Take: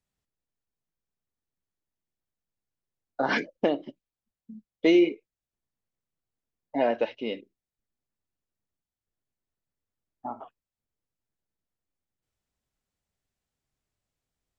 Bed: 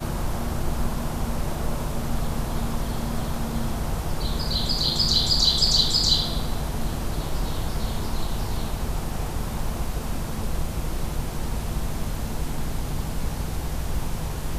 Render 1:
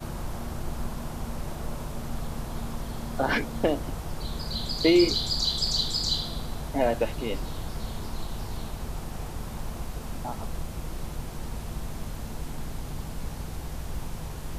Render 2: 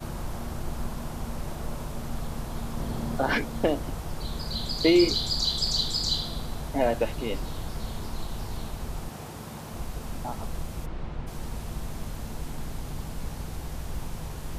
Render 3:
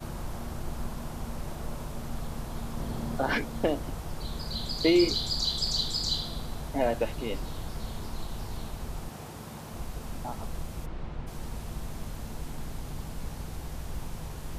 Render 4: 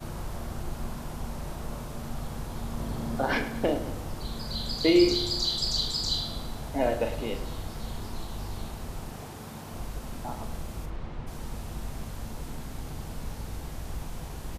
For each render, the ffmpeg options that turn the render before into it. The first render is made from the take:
ffmpeg -i in.wav -i bed.wav -filter_complex "[1:a]volume=-7dB[link_01];[0:a][link_01]amix=inputs=2:normalize=0" out.wav
ffmpeg -i in.wav -filter_complex "[0:a]asettb=1/sr,asplit=3[link_01][link_02][link_03];[link_01]atrim=end=2.774[link_04];[link_02]atrim=start=2.77:end=3.17,asetpts=PTS-STARTPTS,afade=type=in:duration=0.004:curve=qsin,afade=type=out:start_time=0.396:duration=0.004:curve=qsin,equalizer=frequency=220:width=0.32:gain=5.5[link_05];[link_03]atrim=start=3.166[link_06];[link_04][link_05]acrossfade=duration=0.004:curve1=hsin:curve2=qsin[link_07];[link_07][link_06]acrossfade=duration=0.004:curve1=qsin:curve2=hsin,asettb=1/sr,asplit=3[link_08][link_09][link_10];[link_08]atrim=end=9.094[link_11];[link_09]atrim=start=9.09:end=9.74,asetpts=PTS-STARTPTS,afade=type=in:duration=0.004:curve=qsin,afade=type=out:start_time=0.646:duration=0.004:curve=qsin,highpass=110[link_12];[link_10]atrim=start=9.736[link_13];[link_11][link_12]acrossfade=duration=0.004:curve1=hsin:curve2=qsin[link_14];[link_14][link_13]acrossfade=duration=0.004:curve1=qsin:curve2=hsin,asplit=3[link_15][link_16][link_17];[link_15]afade=type=out:start_time=10.85:duration=0.02[link_18];[link_16]lowpass=2900,afade=type=in:start_time=10.85:duration=0.02,afade=type=out:start_time=11.26:duration=0.02[link_19];[link_17]afade=type=in:start_time=11.26:duration=0.02[link_20];[link_18][link_19][link_20]amix=inputs=3:normalize=0" out.wav
ffmpeg -i in.wav -af "volume=-2.5dB" out.wav
ffmpeg -i in.wav -filter_complex "[0:a]asplit=2[link_01][link_02];[link_02]adelay=40,volume=-8.5dB[link_03];[link_01][link_03]amix=inputs=2:normalize=0,asplit=2[link_04][link_05];[link_05]adelay=105,lowpass=frequency=3900:poles=1,volume=-11.5dB,asplit=2[link_06][link_07];[link_07]adelay=105,lowpass=frequency=3900:poles=1,volume=0.52,asplit=2[link_08][link_09];[link_09]adelay=105,lowpass=frequency=3900:poles=1,volume=0.52,asplit=2[link_10][link_11];[link_11]adelay=105,lowpass=frequency=3900:poles=1,volume=0.52,asplit=2[link_12][link_13];[link_13]adelay=105,lowpass=frequency=3900:poles=1,volume=0.52,asplit=2[link_14][link_15];[link_15]adelay=105,lowpass=frequency=3900:poles=1,volume=0.52[link_16];[link_06][link_08][link_10][link_12][link_14][link_16]amix=inputs=6:normalize=0[link_17];[link_04][link_17]amix=inputs=2:normalize=0" out.wav

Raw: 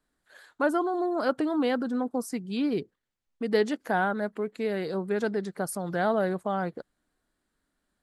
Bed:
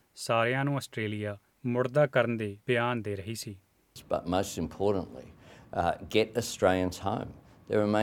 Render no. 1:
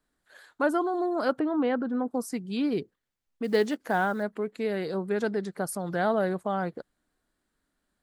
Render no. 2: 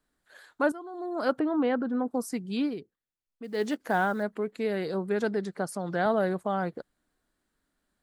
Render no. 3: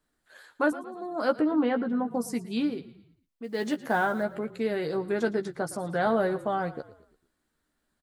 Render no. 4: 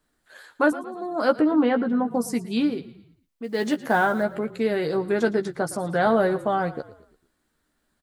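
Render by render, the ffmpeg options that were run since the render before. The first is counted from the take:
ffmpeg -i in.wav -filter_complex "[0:a]asplit=3[link_01][link_02][link_03];[link_01]afade=type=out:start_time=1.38:duration=0.02[link_04];[link_02]lowpass=2200,afade=type=in:start_time=1.38:duration=0.02,afade=type=out:start_time=2.07:duration=0.02[link_05];[link_03]afade=type=in:start_time=2.07:duration=0.02[link_06];[link_04][link_05][link_06]amix=inputs=3:normalize=0,asettb=1/sr,asplit=3[link_07][link_08][link_09];[link_07]atrim=end=3.444[link_10];[link_08]atrim=start=3.44:end=4.23,asetpts=PTS-STARTPTS,afade=type=in:duration=0.004:curve=qsin,afade=type=out:start_time=0.786:duration=0.004:curve=qsin,acrusher=bits=8:mode=log:mix=0:aa=0.000001[link_11];[link_09]atrim=start=4.226[link_12];[link_10][link_11]acrossfade=duration=0.004:curve1=hsin:curve2=qsin[link_13];[link_13][link_12]acrossfade=duration=0.004:curve1=qsin:curve2=hsin" out.wav
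ffmpeg -i in.wav -filter_complex "[0:a]asettb=1/sr,asplit=3[link_01][link_02][link_03];[link_01]atrim=end=5.564[link_04];[link_02]atrim=start=5.56:end=6.06,asetpts=PTS-STARTPTS,afade=type=in:duration=0.004:curve=qsin,afade=type=out:start_time=0.496:duration=0.004:curve=qsin,highpass=120,lowpass=7700[link_05];[link_03]atrim=start=6.056[link_06];[link_04][link_05]acrossfade=duration=0.004:curve1=hsin:curve2=qsin[link_07];[link_07][link_06]acrossfade=duration=0.004:curve1=qsin:curve2=hsin,asplit=4[link_08][link_09][link_10][link_11];[link_08]atrim=end=0.72,asetpts=PTS-STARTPTS,afade=type=out:start_time=0.716:duration=0.004:curve=hsin:silence=0.158489[link_12];[link_09]atrim=start=0.72:end=2.76,asetpts=PTS-STARTPTS,afade=type=in:duration=0.57:curve=qua:silence=0.158489,afade=type=out:start_time=1.9:duration=0.14:silence=0.334965[link_13];[link_10]atrim=start=2.76:end=3.55,asetpts=PTS-STARTPTS,volume=-9.5dB[link_14];[link_11]atrim=start=3.55,asetpts=PTS-STARTPTS,afade=type=in:duration=0.14:silence=0.334965[link_15];[link_12][link_13][link_14][link_15]concat=n=4:v=0:a=1" out.wav
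ffmpeg -i in.wav -filter_complex "[0:a]asplit=2[link_01][link_02];[link_02]adelay=13,volume=-6.5dB[link_03];[link_01][link_03]amix=inputs=2:normalize=0,asplit=5[link_04][link_05][link_06][link_07][link_08];[link_05]adelay=113,afreqshift=-32,volume=-17dB[link_09];[link_06]adelay=226,afreqshift=-64,volume=-23.7dB[link_10];[link_07]adelay=339,afreqshift=-96,volume=-30.5dB[link_11];[link_08]adelay=452,afreqshift=-128,volume=-37.2dB[link_12];[link_04][link_09][link_10][link_11][link_12]amix=inputs=5:normalize=0" out.wav
ffmpeg -i in.wav -af "volume=5dB" out.wav

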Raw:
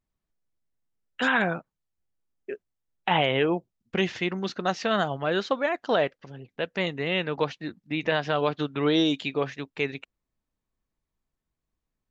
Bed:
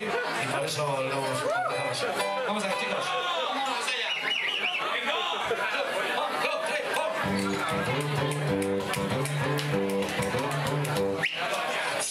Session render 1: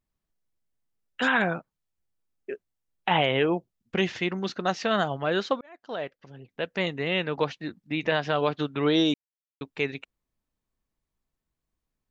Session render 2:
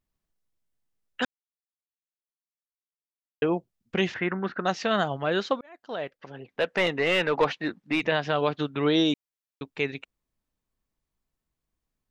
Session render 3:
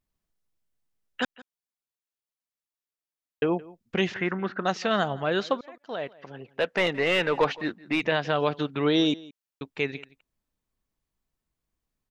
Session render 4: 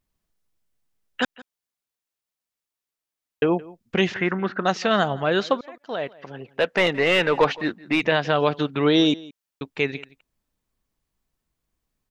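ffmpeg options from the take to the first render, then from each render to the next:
ffmpeg -i in.wav -filter_complex "[0:a]asplit=4[link_01][link_02][link_03][link_04];[link_01]atrim=end=5.61,asetpts=PTS-STARTPTS,afade=type=out:start_time=5.606:duration=0.004:curve=hsin[link_05];[link_02]atrim=start=5.61:end=9.14,asetpts=PTS-STARTPTS,afade=type=in:duration=1.13,afade=type=out:start_time=3.526:duration=0.004:curve=hsin[link_06];[link_03]atrim=start=9.14:end=9.61,asetpts=PTS-STARTPTS,volume=0[link_07];[link_04]atrim=start=9.61,asetpts=PTS-STARTPTS,afade=type=in:duration=0.004:curve=hsin[link_08];[link_05][link_06][link_07][link_08]concat=n=4:v=0:a=1" out.wav
ffmpeg -i in.wav -filter_complex "[0:a]asettb=1/sr,asplit=3[link_01][link_02][link_03];[link_01]atrim=end=4.144[link_04];[link_02]atrim=start=4.14:end=4.65,asetpts=PTS-STARTPTS,afade=type=in:duration=0.004:curve=qsin,afade=type=out:start_time=0.506:duration=0.004:curve=qsin,lowpass=frequency=1600:width_type=q:width=3.2[link_05];[link_03]atrim=start=4.646[link_06];[link_04][link_05]acrossfade=duration=0.004:curve1=hsin:curve2=qsin[link_07];[link_07][link_06]acrossfade=duration=0.004:curve1=qsin:curve2=hsin,asettb=1/sr,asplit=3[link_08][link_09][link_10];[link_08]atrim=end=6.204[link_11];[link_09]atrim=start=6.2:end=8.02,asetpts=PTS-STARTPTS,afade=type=in:duration=0.004:curve=qsin,afade=type=out:start_time=1.816:duration=0.004:curve=qsin,asplit=2[link_12][link_13];[link_13]highpass=frequency=720:poles=1,volume=18dB,asoftclip=type=tanh:threshold=-10.5dB[link_14];[link_12][link_14]amix=inputs=2:normalize=0,lowpass=frequency=1700:poles=1,volume=-6dB[link_15];[link_10]atrim=start=8.016[link_16];[link_11][link_15]acrossfade=duration=0.004:curve1=hsin:curve2=qsin[link_17];[link_17][link_16]acrossfade=duration=0.004:curve1=qsin:curve2=hsin,asplit=3[link_18][link_19][link_20];[link_18]atrim=end=1.25,asetpts=PTS-STARTPTS,afade=type=out:start_time=1.246:duration=0.004:curve=hsin[link_21];[link_19]atrim=start=1.25:end=3.42,asetpts=PTS-STARTPTS,volume=0[link_22];[link_20]atrim=start=3.42,asetpts=PTS-STARTPTS,afade=type=in:duration=0.004:curve=hsin[link_23];[link_21][link_22][link_23]concat=n=3:v=0:a=1" out.wav
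ffmpeg -i in.wav -filter_complex "[0:a]asplit=2[link_01][link_02];[link_02]adelay=169.1,volume=-21dB,highshelf=frequency=4000:gain=-3.8[link_03];[link_01][link_03]amix=inputs=2:normalize=0" out.wav
ffmpeg -i in.wav -af "volume=4.5dB" out.wav

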